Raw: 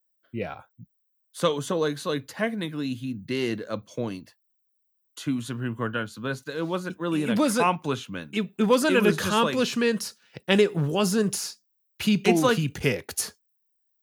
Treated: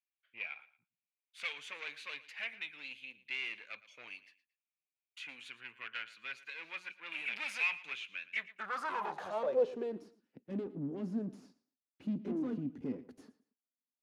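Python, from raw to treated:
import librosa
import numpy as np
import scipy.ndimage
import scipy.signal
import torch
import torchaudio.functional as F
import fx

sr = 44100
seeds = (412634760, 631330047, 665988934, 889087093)

p1 = fx.tube_stage(x, sr, drive_db=26.0, bias=0.65)
p2 = fx.tilt_shelf(p1, sr, db=-3.0, hz=970.0)
p3 = fx.filter_sweep_bandpass(p2, sr, from_hz=2400.0, to_hz=260.0, start_s=8.22, end_s=10.15, q=7.2)
p4 = p3 + fx.echo_feedback(p3, sr, ms=114, feedback_pct=28, wet_db=-18, dry=0)
y = F.gain(torch.from_numpy(p4), 7.5).numpy()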